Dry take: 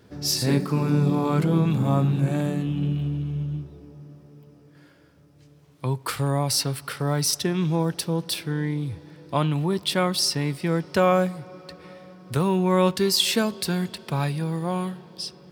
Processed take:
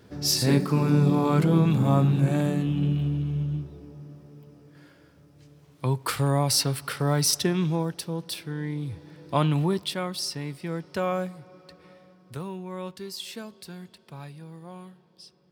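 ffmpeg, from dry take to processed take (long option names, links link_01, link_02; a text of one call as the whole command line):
ffmpeg -i in.wav -af "volume=7.5dB,afade=type=out:start_time=7.46:duration=0.48:silence=0.473151,afade=type=in:start_time=8.55:duration=1.06:silence=0.446684,afade=type=out:start_time=9.61:duration=0.35:silence=0.354813,afade=type=out:start_time=11.93:duration=0.72:silence=0.398107" out.wav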